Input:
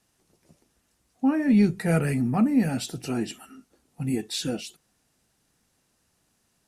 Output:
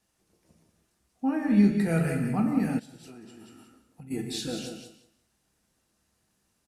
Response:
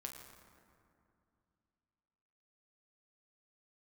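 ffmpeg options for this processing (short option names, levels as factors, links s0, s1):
-filter_complex "[0:a]aecho=1:1:183|366|549:0.422|0.0717|0.0122[s0];[1:a]atrim=start_sample=2205,afade=t=out:st=0.21:d=0.01,atrim=end_sample=9702[s1];[s0][s1]afir=irnorm=-1:irlink=0,asplit=3[s2][s3][s4];[s2]afade=t=out:st=2.78:d=0.02[s5];[s3]acompressor=threshold=0.00631:ratio=12,afade=t=in:st=2.78:d=0.02,afade=t=out:st=4.1:d=0.02[s6];[s4]afade=t=in:st=4.1:d=0.02[s7];[s5][s6][s7]amix=inputs=3:normalize=0"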